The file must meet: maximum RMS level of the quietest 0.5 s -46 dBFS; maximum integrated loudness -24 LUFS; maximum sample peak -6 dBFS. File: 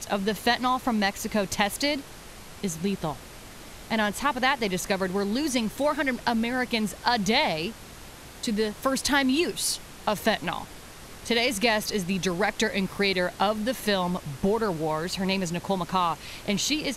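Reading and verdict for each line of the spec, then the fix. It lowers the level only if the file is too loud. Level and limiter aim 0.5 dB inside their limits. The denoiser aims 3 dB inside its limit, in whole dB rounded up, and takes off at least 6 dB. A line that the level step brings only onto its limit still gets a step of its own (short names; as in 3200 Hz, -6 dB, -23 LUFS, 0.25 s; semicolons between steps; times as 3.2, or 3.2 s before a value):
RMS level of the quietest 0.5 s -44 dBFS: fail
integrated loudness -26.5 LUFS: OK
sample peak -6.5 dBFS: OK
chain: denoiser 6 dB, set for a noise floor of -44 dBFS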